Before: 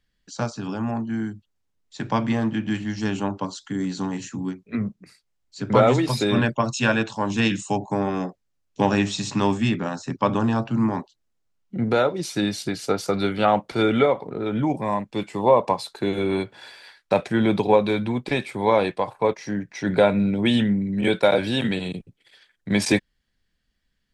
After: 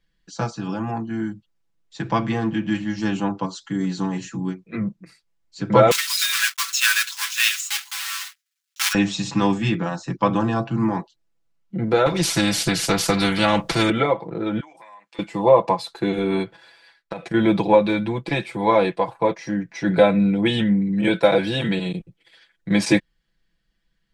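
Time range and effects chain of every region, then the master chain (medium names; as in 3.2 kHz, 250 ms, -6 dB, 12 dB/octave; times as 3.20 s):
5.91–8.95 s: block-companded coder 3-bit + steep high-pass 1.3 kHz + treble shelf 2.6 kHz +10 dB
12.06–13.90 s: tone controls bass +12 dB, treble +3 dB + spectrum-flattening compressor 2:1
14.60–15.19 s: high-pass 1.2 kHz + compression 10:1, threshold -43 dBFS
16.56–17.34 s: gate -38 dBFS, range -8 dB + compression 16:1, threshold -26 dBFS
whole clip: treble shelf 6 kHz -6 dB; comb 6 ms, depth 82%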